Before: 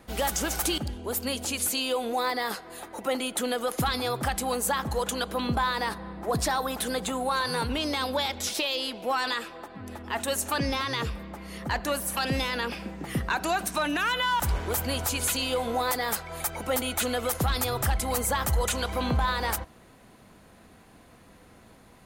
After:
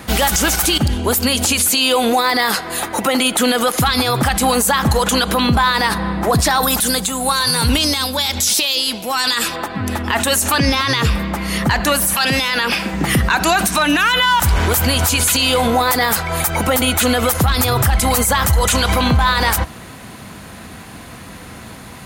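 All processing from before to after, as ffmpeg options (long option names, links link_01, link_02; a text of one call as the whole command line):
ffmpeg -i in.wav -filter_complex "[0:a]asettb=1/sr,asplit=3[link_01][link_02][link_03];[link_01]atrim=end=6.634[link_04];[link_02]atrim=start=6.63:end=9.56,asetpts=PTS-STARTPTS,afade=type=in:duration=0.004:curve=qsin,afade=type=out:start_time=2.926:duration=0.004:curve=qsin,bass=frequency=250:gain=4,treble=frequency=4000:gain=11,tremolo=f=1:d=0.75[link_05];[link_03]atrim=start=9.556[link_06];[link_04][link_05]acrossfade=duration=0.004:curve1=hsin:curve2=qsin[link_07];[link_07][link_06]acrossfade=duration=0.004:curve1=qsin:curve2=hsin,asettb=1/sr,asplit=3[link_08][link_09][link_10];[link_08]atrim=end=12.144[link_11];[link_09]atrim=start=12.14:end=12.93,asetpts=PTS-STARTPTS,afade=type=in:duration=0.004:curve=qsin,afade=type=out:start_time=0.786:duration=0.004:curve=qsin,highpass=frequency=92:poles=1,lowshelf=frequency=340:gain=-7[link_12];[link_10]atrim=start=12.926[link_13];[link_11][link_12]acrossfade=duration=0.004:curve1=hsin:curve2=qsin[link_14];[link_14][link_13]acrossfade=duration=0.004:curve1=qsin:curve2=hsin,asettb=1/sr,asplit=3[link_15][link_16][link_17];[link_15]atrim=end=15.614[link_18];[link_16]atrim=start=15.61:end=17.94,asetpts=PTS-STARTPTS,afade=type=in:duration=0.004:curve=qsin,afade=type=out:start_time=2.326:duration=0.004:curve=qsin,lowpass=frequency=1300:poles=1,aemphasis=mode=production:type=75kf[link_19];[link_17]atrim=start=17.936[link_20];[link_18][link_19]acrossfade=duration=0.004:curve1=hsin:curve2=qsin[link_21];[link_21][link_20]acrossfade=duration=0.004:curve1=qsin:curve2=hsin,highpass=60,equalizer=frequency=470:width_type=o:width=1.9:gain=-6.5,alimiter=level_in=27dB:limit=-1dB:release=50:level=0:latency=1,volume=-5.5dB" out.wav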